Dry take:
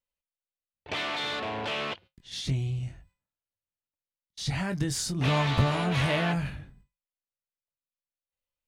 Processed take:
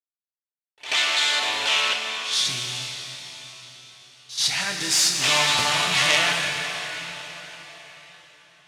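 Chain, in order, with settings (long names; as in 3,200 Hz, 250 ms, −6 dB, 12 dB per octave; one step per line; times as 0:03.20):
stylus tracing distortion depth 0.071 ms
log-companded quantiser 6 bits
meter weighting curve ITU-R 468
backwards echo 83 ms −14.5 dB
convolution reverb RT60 4.7 s, pre-delay 6 ms, DRR 2.5 dB
level +3.5 dB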